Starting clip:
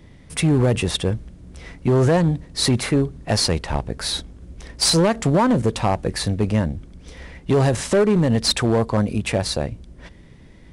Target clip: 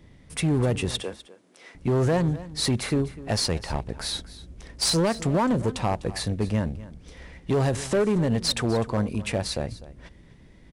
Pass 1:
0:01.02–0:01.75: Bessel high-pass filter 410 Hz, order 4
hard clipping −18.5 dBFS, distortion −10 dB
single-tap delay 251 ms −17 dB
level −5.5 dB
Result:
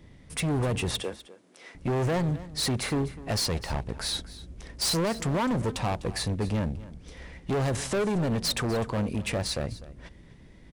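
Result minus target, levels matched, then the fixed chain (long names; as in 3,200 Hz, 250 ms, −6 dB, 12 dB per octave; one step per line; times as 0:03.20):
hard clipping: distortion +21 dB
0:01.02–0:01.75: Bessel high-pass filter 410 Hz, order 4
hard clipping −12.5 dBFS, distortion −31 dB
single-tap delay 251 ms −17 dB
level −5.5 dB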